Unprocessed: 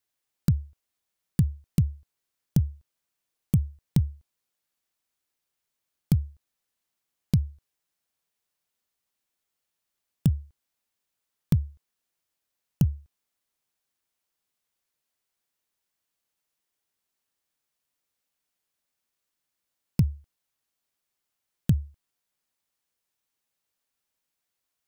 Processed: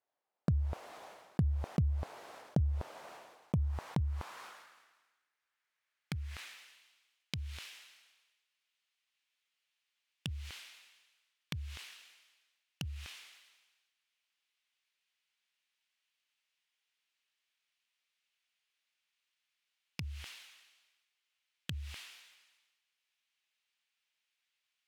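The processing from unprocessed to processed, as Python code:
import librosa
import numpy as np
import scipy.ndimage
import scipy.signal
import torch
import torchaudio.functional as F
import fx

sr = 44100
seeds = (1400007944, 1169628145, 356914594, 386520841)

y = fx.filter_sweep_bandpass(x, sr, from_hz=690.0, to_hz=2700.0, start_s=3.15, end_s=6.94, q=1.7)
y = fx.sustainer(y, sr, db_per_s=44.0)
y = y * librosa.db_to_amplitude(7.5)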